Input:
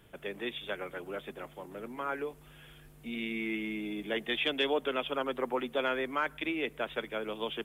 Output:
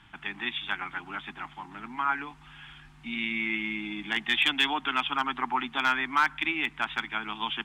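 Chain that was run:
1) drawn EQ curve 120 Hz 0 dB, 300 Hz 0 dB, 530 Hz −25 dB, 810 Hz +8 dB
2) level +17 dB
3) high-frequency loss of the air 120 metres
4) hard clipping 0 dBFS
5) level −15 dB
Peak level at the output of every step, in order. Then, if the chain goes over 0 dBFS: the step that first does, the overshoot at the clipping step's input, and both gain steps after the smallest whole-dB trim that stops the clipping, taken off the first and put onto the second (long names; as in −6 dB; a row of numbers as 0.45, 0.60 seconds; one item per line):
−11.5, +5.5, +4.5, 0.0, −15.0 dBFS
step 2, 4.5 dB
step 2 +12 dB, step 5 −10 dB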